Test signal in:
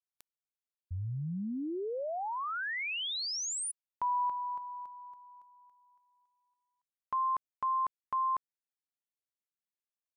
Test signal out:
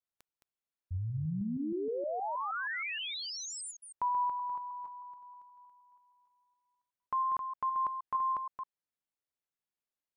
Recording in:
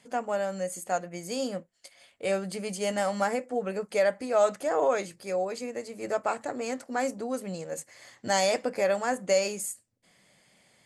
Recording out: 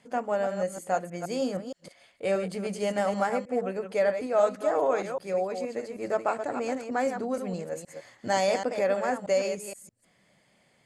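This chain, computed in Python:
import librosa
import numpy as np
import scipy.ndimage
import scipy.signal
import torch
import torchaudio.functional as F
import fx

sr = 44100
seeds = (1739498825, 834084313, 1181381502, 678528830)

p1 = fx.reverse_delay(x, sr, ms=157, wet_db=-7.5)
p2 = fx.high_shelf(p1, sr, hz=3100.0, db=-8.5)
p3 = fx.rider(p2, sr, range_db=3, speed_s=2.0)
p4 = p2 + F.gain(torch.from_numpy(p3), -1.0).numpy()
y = F.gain(torch.from_numpy(p4), -5.0).numpy()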